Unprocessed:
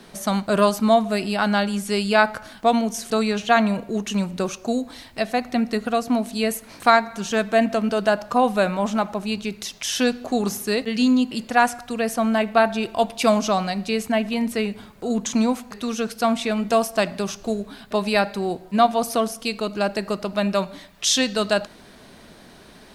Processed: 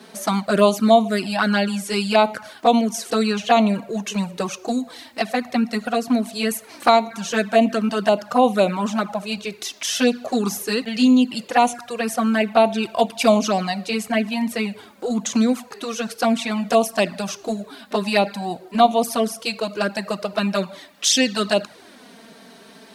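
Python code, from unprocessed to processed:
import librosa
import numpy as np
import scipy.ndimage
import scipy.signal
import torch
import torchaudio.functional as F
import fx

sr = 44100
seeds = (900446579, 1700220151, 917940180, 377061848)

y = scipy.signal.sosfilt(scipy.signal.butter(2, 190.0, 'highpass', fs=sr, output='sos'), x)
y = fx.env_flanger(y, sr, rest_ms=4.9, full_db=-15.0)
y = y * librosa.db_to_amplitude(5.0)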